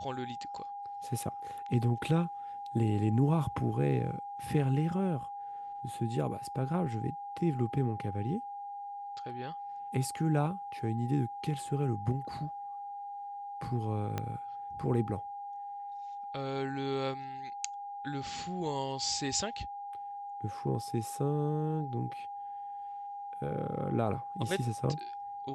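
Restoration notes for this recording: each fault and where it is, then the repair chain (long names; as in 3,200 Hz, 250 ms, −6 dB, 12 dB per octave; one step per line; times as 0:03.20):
whistle 810 Hz −39 dBFS
0:14.18: click −19 dBFS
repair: click removal
notch filter 810 Hz, Q 30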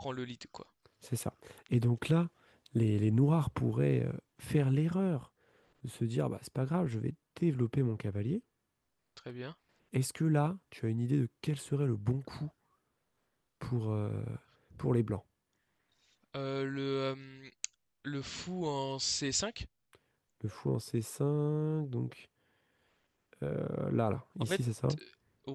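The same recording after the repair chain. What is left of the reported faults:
0:14.18: click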